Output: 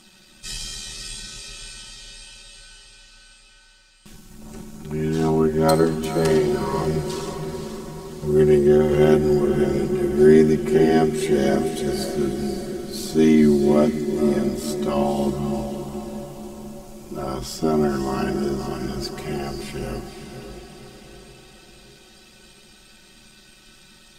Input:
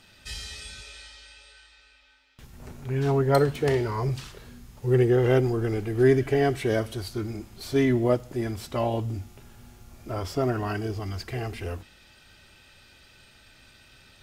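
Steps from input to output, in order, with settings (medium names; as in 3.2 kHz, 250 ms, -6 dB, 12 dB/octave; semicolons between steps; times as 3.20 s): ten-band graphic EQ 125 Hz -7 dB, 250 Hz +8 dB, 500 Hz -4 dB, 2 kHz -5 dB, 8 kHz +6 dB; granular stretch 1.7×, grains 26 ms; echo that smears into a reverb 526 ms, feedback 54%, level -8 dB; trim +5.5 dB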